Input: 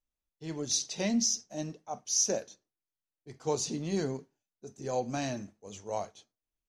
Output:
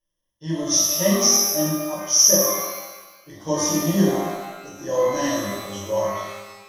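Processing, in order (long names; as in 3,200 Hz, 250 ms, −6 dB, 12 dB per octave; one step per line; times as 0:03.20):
EQ curve with evenly spaced ripples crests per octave 1.2, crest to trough 18 dB
reverb with rising layers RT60 1.2 s, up +12 semitones, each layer −8 dB, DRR −6.5 dB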